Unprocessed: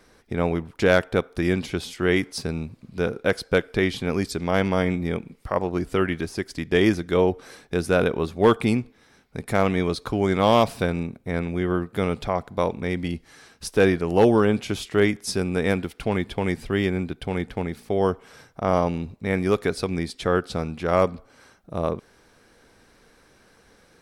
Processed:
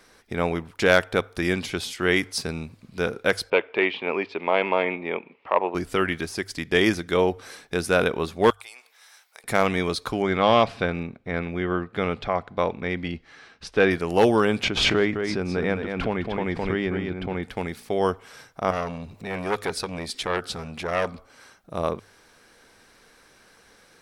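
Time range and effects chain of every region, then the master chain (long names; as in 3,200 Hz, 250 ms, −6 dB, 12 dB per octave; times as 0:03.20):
0:03.50–0:05.75: hard clipping −12.5 dBFS + loudspeaker in its box 320–2,900 Hz, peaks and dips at 390 Hz +4 dB, 600 Hz +3 dB, 940 Hz +8 dB, 1,500 Hz −6 dB, 2,600 Hz +8 dB
0:08.50–0:09.44: high-pass filter 640 Hz 24 dB per octave + high-shelf EQ 5,900 Hz +11.5 dB + downward compressor 4 to 1, threshold −45 dBFS
0:10.22–0:13.91: low-pass filter 3,400 Hz + notch filter 940 Hz, Q 17
0:14.63–0:17.43: head-to-tape spacing loss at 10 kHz 27 dB + single-tap delay 211 ms −6.5 dB + background raised ahead of every attack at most 36 dB per second
0:18.71–0:21.14: upward compression, threshold −28 dBFS + saturating transformer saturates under 1,200 Hz
whole clip: tilt shelving filter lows −4 dB, about 640 Hz; mains-hum notches 50/100 Hz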